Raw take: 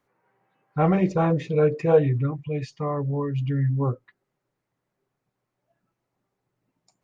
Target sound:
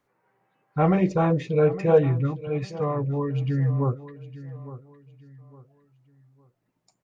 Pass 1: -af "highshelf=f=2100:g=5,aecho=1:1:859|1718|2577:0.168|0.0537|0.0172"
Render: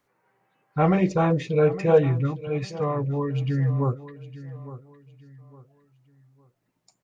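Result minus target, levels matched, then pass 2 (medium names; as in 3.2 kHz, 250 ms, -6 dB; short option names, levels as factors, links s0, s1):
4 kHz band +3.5 dB
-af "aecho=1:1:859|1718|2577:0.168|0.0537|0.0172"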